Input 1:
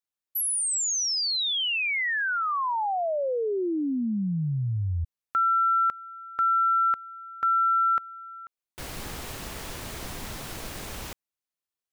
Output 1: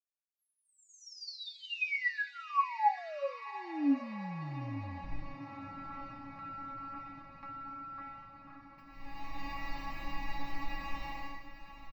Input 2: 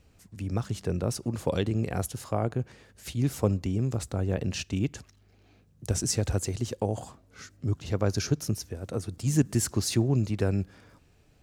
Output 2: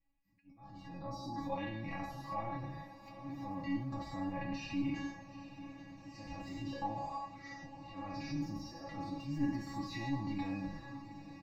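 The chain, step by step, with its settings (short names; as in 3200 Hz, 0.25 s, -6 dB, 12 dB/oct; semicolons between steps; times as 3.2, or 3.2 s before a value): spectral trails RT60 0.77 s; spectral noise reduction 22 dB; high shelf 2600 Hz +7.5 dB; comb 6.1 ms, depth 98%; transient shaper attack -11 dB, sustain +6 dB; compressor 2.5:1, threshold -30 dBFS; auto swell 0.701 s; air absorption 460 m; fixed phaser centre 2200 Hz, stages 8; resonator 280 Hz, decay 0.19 s, harmonics all, mix 100%; diffused feedback echo 0.819 s, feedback 72%, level -13.5 dB; gain +12.5 dB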